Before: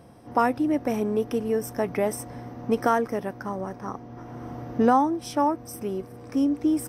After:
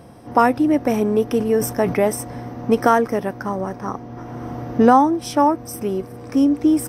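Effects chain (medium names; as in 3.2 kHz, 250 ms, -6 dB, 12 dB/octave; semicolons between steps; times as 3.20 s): 1.37–2.01 s: decay stretcher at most 95 dB/s; trim +7 dB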